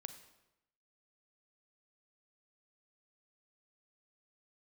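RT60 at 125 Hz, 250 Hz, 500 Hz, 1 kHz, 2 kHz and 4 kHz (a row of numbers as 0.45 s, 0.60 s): 0.95 s, 0.95 s, 0.90 s, 0.90 s, 0.85 s, 0.75 s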